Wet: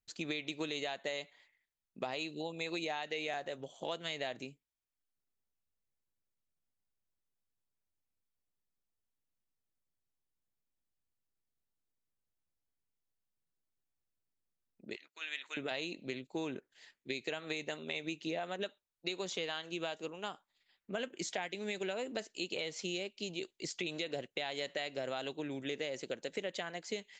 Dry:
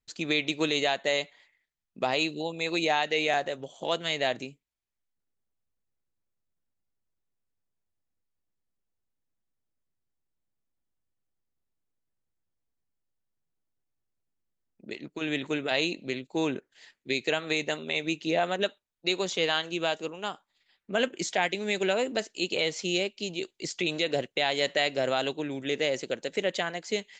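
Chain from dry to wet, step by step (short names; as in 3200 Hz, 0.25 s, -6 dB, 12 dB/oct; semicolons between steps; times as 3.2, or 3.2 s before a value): 14.96–15.57 Chebyshev high-pass 1500 Hz, order 2; compressor, threshold -29 dBFS, peak gain reduction 8.5 dB; gain -5.5 dB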